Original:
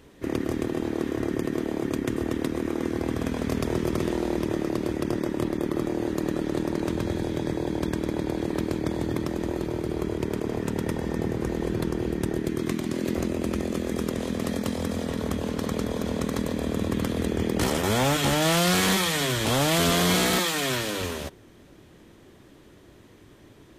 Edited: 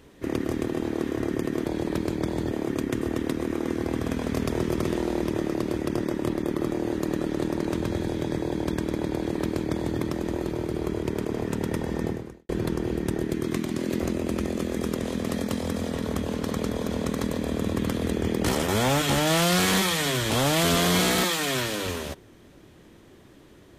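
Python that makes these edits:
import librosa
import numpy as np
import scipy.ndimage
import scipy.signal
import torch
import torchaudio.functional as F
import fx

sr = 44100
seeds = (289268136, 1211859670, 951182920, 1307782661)

y = fx.edit(x, sr, fx.duplicate(start_s=8.29, length_s=0.85, to_s=1.66),
    fx.fade_out_span(start_s=11.22, length_s=0.42, curve='qua'), tone=tone)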